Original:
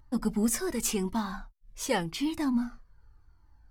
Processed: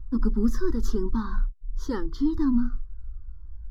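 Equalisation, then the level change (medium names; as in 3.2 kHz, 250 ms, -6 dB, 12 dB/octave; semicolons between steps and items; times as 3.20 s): RIAA curve playback; static phaser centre 630 Hz, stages 6; static phaser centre 2.6 kHz, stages 6; +3.5 dB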